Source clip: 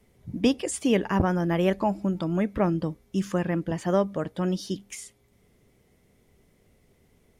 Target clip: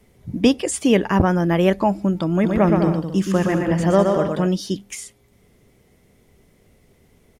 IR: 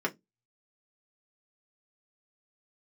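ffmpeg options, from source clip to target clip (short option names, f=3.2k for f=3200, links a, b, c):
-filter_complex "[0:a]asplit=3[a][b][c];[a]afade=t=out:st=2.43:d=0.02[d];[b]aecho=1:1:120|204|262.8|304|332.8:0.631|0.398|0.251|0.158|0.1,afade=t=in:st=2.43:d=0.02,afade=t=out:st=4.46:d=0.02[e];[c]afade=t=in:st=4.46:d=0.02[f];[d][e][f]amix=inputs=3:normalize=0,volume=6.5dB"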